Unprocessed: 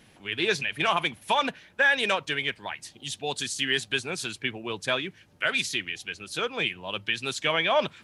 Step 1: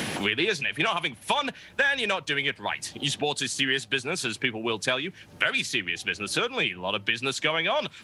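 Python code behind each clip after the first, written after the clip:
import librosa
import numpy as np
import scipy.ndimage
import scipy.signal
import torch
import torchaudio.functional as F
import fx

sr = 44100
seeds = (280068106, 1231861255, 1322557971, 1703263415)

y = fx.band_squash(x, sr, depth_pct=100)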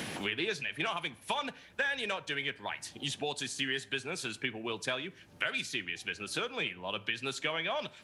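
y = fx.rev_plate(x, sr, seeds[0], rt60_s=0.61, hf_ratio=0.6, predelay_ms=0, drr_db=15.5)
y = y * librosa.db_to_amplitude(-8.5)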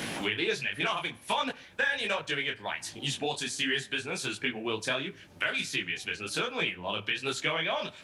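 y = fx.detune_double(x, sr, cents=47)
y = y * librosa.db_to_amplitude(7.5)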